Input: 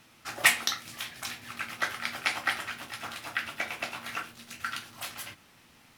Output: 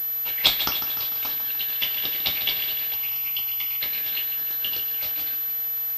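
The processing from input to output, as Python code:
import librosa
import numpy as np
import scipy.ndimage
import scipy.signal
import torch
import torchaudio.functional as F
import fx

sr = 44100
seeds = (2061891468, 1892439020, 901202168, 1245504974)

p1 = fx.band_shuffle(x, sr, order='4123')
p2 = fx.quant_dither(p1, sr, seeds[0], bits=6, dither='triangular')
p3 = p1 + (p2 * librosa.db_to_amplitude(-7.5))
p4 = fx.fixed_phaser(p3, sr, hz=2600.0, stages=8, at=(2.94, 3.81))
p5 = fx.echo_feedback(p4, sr, ms=149, feedback_pct=57, wet_db=-9.5)
y = fx.pwm(p5, sr, carrier_hz=12000.0)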